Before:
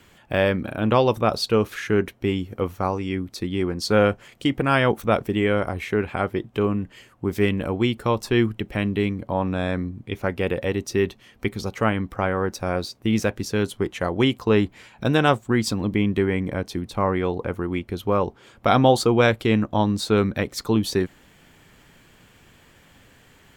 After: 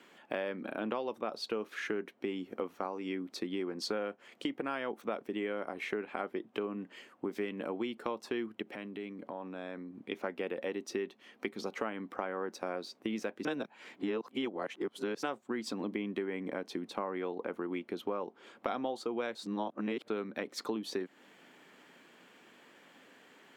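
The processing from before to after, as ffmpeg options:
-filter_complex "[0:a]asettb=1/sr,asplit=3[a][b][c];[a]atrim=end=8.624[d];[b]atrim=start=8.62:end=9.95,asetpts=PTS-STARTPTS,afade=t=in:d=0.004:c=qsin,afade=t=out:st=1.326:d=0.004:c=qsin,acompressor=threshold=-33dB:ratio=6:attack=3.2:release=140:knee=1:detection=peak[e];[c]atrim=start=9.946[f];[d][e]acrossfade=d=0.004:c1=hsin:c2=qsin[g];[g][f]acrossfade=d=0.004:c1=qsin:c2=hsin,asplit=5[h][i][j][k][l];[h]atrim=end=13.452[m];[i]atrim=start=13.448:end=15.232,asetpts=PTS-STARTPTS,areverse[n];[j]atrim=start=15.228:end=19.352[o];[k]atrim=start=19.348:end=20.082,asetpts=PTS-STARTPTS,areverse[p];[l]atrim=start=20.078[q];[m][n]acrossfade=d=0.004:c1=hsin:c2=hsin[r];[r][o]acrossfade=d=0.004:c1=hsin:c2=hsin[s];[s][p]acrossfade=d=0.004:c1=hsin:c2=hsin[t];[t][q]acrossfade=d=0.004:c1=hsin:c2=hsin,highpass=f=230:w=0.5412,highpass=f=230:w=1.3066,highshelf=f=5.9k:g=-11.5,acompressor=threshold=-30dB:ratio=6,volume=-3dB"

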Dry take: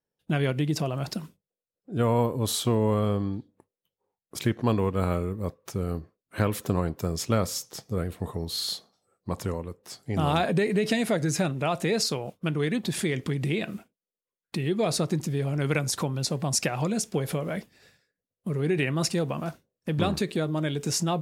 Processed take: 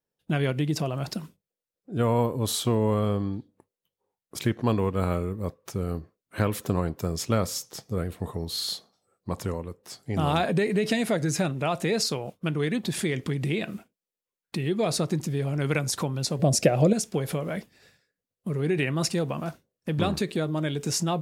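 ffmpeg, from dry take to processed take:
-filter_complex "[0:a]asettb=1/sr,asplit=3[a][b][c];[a]atrim=end=16.394[d];[b]atrim=start=16.39:end=16.93,asetpts=PTS-STARTPTS,afade=t=in:d=0.004:c=qsin,afade=t=out:st=0.536:d=0.004:c=qsin,lowshelf=f=750:t=q:w=3:g=6.5[e];[c]atrim=start=16.926[f];[d][e]acrossfade=d=0.004:c1=hsin:c2=qsin[g];[g][f]acrossfade=d=0.004:c1=qsin:c2=hsin"

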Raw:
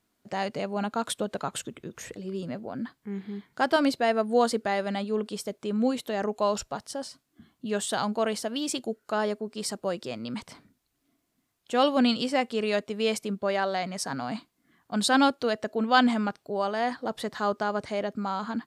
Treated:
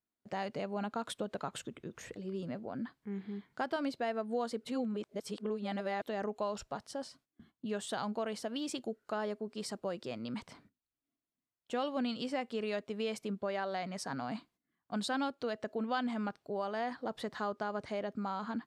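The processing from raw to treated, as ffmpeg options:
-filter_complex "[0:a]asplit=3[a][b][c];[a]atrim=end=4.652[d];[b]atrim=start=4.648:end=6.022,asetpts=PTS-STARTPTS,areverse[e];[c]atrim=start=6.018[f];[d][e]acrossfade=d=0.004:c1=hsin:c2=hsin[g];[g][f]acrossfade=d=0.004:c1=hsin:c2=hsin,agate=range=-15dB:threshold=-57dB:ratio=16:detection=peak,acompressor=threshold=-28dB:ratio=3,highshelf=f=6k:g=-9,volume=-5dB"

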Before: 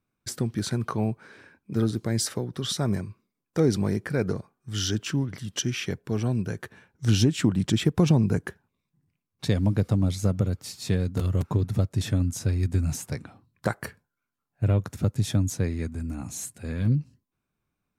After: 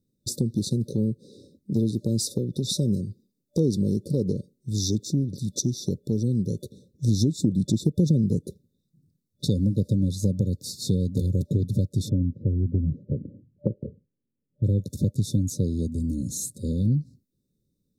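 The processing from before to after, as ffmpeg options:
-filter_complex "[0:a]asplit=3[a][b][c];[a]afade=t=out:st=12.08:d=0.02[d];[b]lowpass=f=1.1k:w=0.5412,lowpass=f=1.1k:w=1.3066,afade=t=in:st=12.08:d=0.02,afade=t=out:st=14.63:d=0.02[e];[c]afade=t=in:st=14.63:d=0.02[f];[d][e][f]amix=inputs=3:normalize=0,afftfilt=real='re*(1-between(b*sr/4096,590,3500))':imag='im*(1-between(b*sr/4096,590,3500))':win_size=4096:overlap=0.75,equalizer=f=190:t=o:w=1.4:g=5,acompressor=threshold=-28dB:ratio=2,volume=4dB"

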